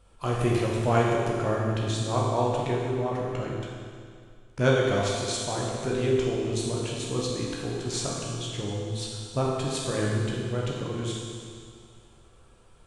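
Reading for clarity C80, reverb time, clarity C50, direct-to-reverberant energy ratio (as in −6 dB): 0.5 dB, 2.2 s, −1.0 dB, −4.0 dB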